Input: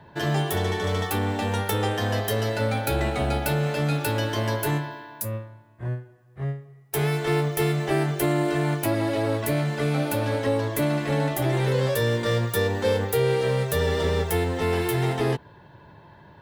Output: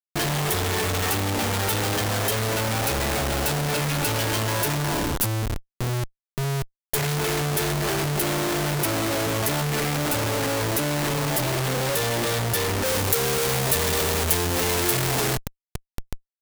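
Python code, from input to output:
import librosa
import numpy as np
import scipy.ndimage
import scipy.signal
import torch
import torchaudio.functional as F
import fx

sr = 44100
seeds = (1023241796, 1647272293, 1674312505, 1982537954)

y = fx.schmitt(x, sr, flips_db=-39.0)
y = fx.high_shelf(y, sr, hz=4600.0, db=fx.steps((0.0, 6.0), (12.84, 12.0)))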